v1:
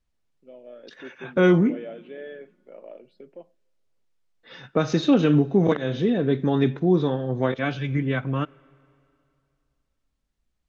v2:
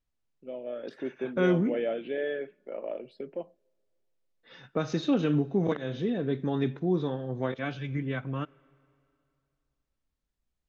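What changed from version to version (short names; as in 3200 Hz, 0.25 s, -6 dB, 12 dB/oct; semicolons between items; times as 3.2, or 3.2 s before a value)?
first voice +7.0 dB; second voice -7.5 dB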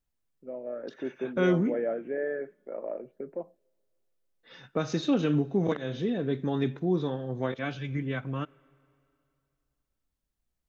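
first voice: add steep low-pass 1900 Hz 36 dB/oct; master: remove air absorption 57 m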